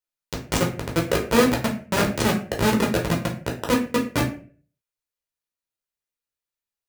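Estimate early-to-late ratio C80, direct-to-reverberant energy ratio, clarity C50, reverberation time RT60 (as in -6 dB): 14.0 dB, -1.0 dB, 9.0 dB, 0.45 s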